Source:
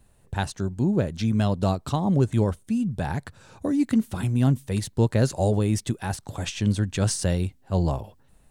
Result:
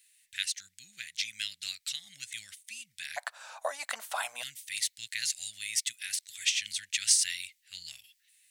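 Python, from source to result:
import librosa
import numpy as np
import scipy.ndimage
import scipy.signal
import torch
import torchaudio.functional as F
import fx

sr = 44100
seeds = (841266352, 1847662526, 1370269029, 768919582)

y = fx.ellip_highpass(x, sr, hz=fx.steps((0.0, 2000.0), (3.16, 650.0), (4.41, 2000.0)), order=4, stop_db=50)
y = F.gain(torch.from_numpy(y), 6.0).numpy()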